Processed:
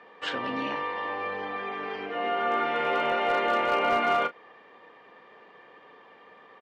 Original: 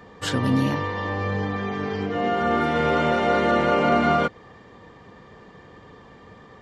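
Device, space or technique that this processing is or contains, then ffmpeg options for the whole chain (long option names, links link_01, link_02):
megaphone: -filter_complex "[0:a]highpass=460,lowpass=3000,equalizer=frequency=2600:width_type=o:width=0.54:gain=6,asoftclip=type=hard:threshold=-14.5dB,asplit=2[link_01][link_02];[link_02]adelay=33,volume=-13dB[link_03];[link_01][link_03]amix=inputs=2:normalize=0,volume=-3dB"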